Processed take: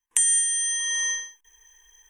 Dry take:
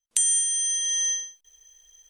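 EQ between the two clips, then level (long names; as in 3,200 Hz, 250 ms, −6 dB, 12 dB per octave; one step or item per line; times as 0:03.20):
flat-topped bell 1,300 Hz +10.5 dB 1.2 octaves
phaser with its sweep stopped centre 900 Hz, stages 8
+4.5 dB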